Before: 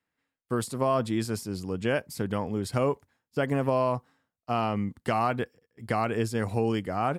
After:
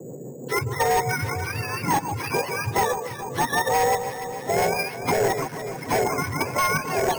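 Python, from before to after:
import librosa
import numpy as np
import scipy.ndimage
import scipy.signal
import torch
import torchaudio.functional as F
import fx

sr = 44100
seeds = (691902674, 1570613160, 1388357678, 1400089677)

p1 = fx.octave_mirror(x, sr, pivot_hz=700.0)
p2 = fx.peak_eq(p1, sr, hz=710.0, db=13.0, octaves=2.9)
p3 = fx.level_steps(p2, sr, step_db=22)
p4 = p2 + F.gain(torch.from_numpy(p3), 0.5).numpy()
p5 = fx.dmg_noise_band(p4, sr, seeds[0], low_hz=140.0, high_hz=540.0, level_db=-40.0)
p6 = fx.rotary(p5, sr, hz=6.0)
p7 = np.clip(p6, -10.0 ** (-13.5 / 20.0), 10.0 ** (-13.5 / 20.0))
p8 = fx.graphic_eq_31(p7, sr, hz=(125, 200, 315, 630, 1250), db=(9, -8, -9, -8, -9))
p9 = fx.echo_alternate(p8, sr, ms=146, hz=1100.0, feedback_pct=67, wet_db=-8.5)
p10 = np.repeat(scipy.signal.resample_poly(p9, 1, 6), 6)[:len(p9)]
y = fx.band_squash(p10, sr, depth_pct=40)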